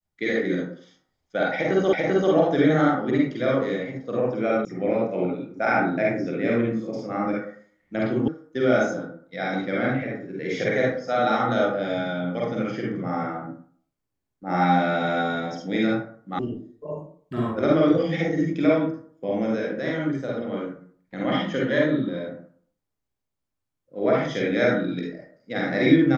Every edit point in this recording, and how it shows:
0:01.93: the same again, the last 0.39 s
0:04.65: cut off before it has died away
0:08.28: cut off before it has died away
0:16.39: cut off before it has died away

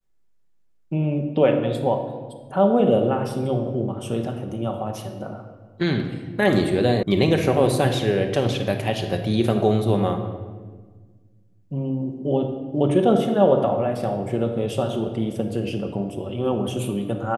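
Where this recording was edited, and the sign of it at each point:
0:07.03: cut off before it has died away

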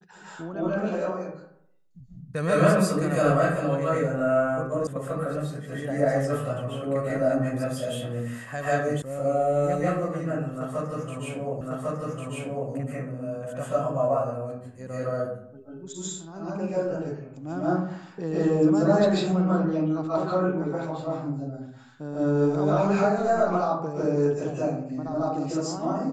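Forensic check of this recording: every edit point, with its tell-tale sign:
0:04.87: cut off before it has died away
0:09.02: cut off before it has died away
0:11.61: the same again, the last 1.1 s

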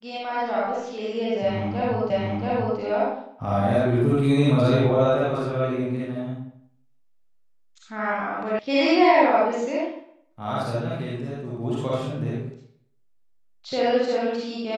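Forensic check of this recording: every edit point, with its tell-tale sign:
0:02.10: the same again, the last 0.68 s
0:08.59: cut off before it has died away

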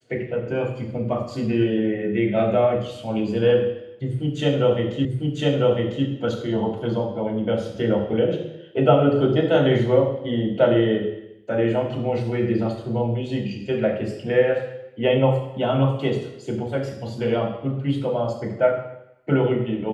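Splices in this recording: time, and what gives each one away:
0:05.05: the same again, the last 1 s

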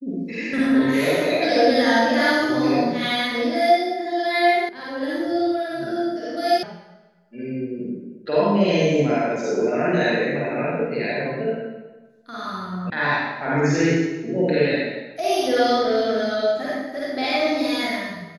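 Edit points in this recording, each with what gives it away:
0:04.69: cut off before it has died away
0:06.63: cut off before it has died away
0:12.90: cut off before it has died away

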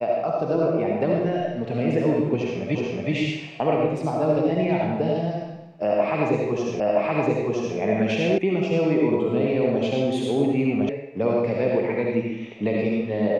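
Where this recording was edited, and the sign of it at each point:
0:02.75: the same again, the last 0.37 s
0:06.80: the same again, the last 0.97 s
0:08.38: cut off before it has died away
0:10.89: cut off before it has died away

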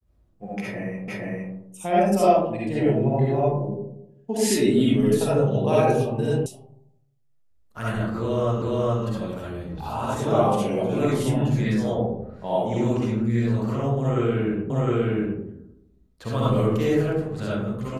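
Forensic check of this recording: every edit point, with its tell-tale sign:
0:01.08: the same again, the last 0.46 s
0:06.46: cut off before it has died away
0:08.62: the same again, the last 0.42 s
0:14.70: the same again, the last 0.71 s

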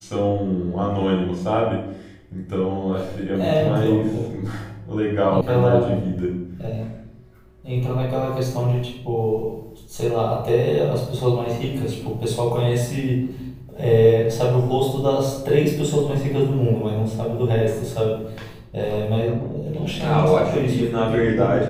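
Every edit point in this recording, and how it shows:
0:05.41: cut off before it has died away

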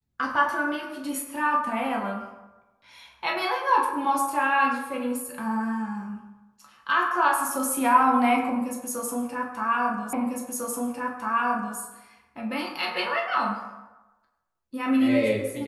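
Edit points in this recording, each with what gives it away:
0:10.13: the same again, the last 1.65 s

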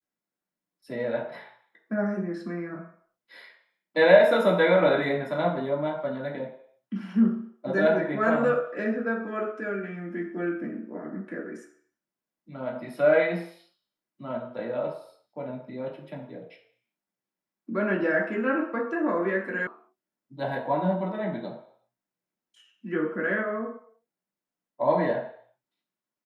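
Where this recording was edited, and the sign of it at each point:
0:19.67: cut off before it has died away

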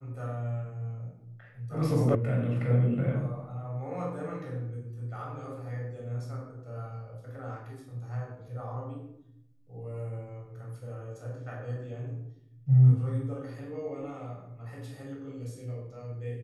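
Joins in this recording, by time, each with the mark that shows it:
0:02.15: cut off before it has died away

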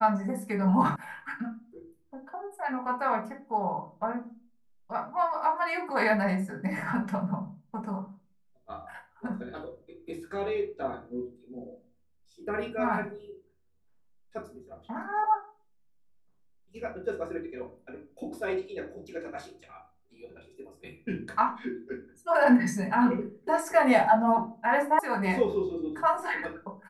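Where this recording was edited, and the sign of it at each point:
0:00.96: cut off before it has died away
0:24.99: cut off before it has died away

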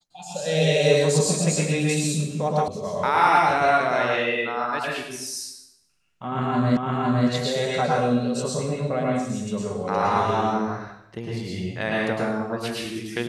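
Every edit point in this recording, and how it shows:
0:02.68: cut off before it has died away
0:06.77: the same again, the last 0.51 s

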